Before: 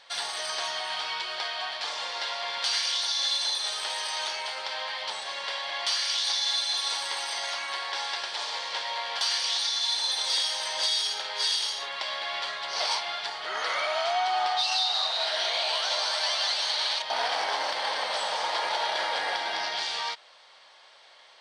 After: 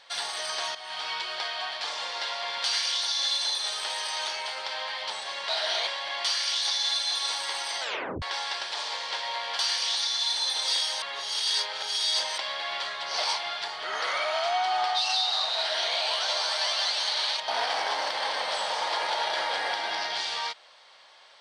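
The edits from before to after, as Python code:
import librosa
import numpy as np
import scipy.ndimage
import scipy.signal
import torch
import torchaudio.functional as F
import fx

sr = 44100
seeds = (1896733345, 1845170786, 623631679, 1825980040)

y = fx.edit(x, sr, fx.fade_in_from(start_s=0.75, length_s=0.34, floor_db=-13.0),
    fx.tape_stop(start_s=7.42, length_s=0.42),
    fx.reverse_span(start_s=10.64, length_s=1.36),
    fx.duplicate(start_s=15.19, length_s=0.38, to_s=5.49), tone=tone)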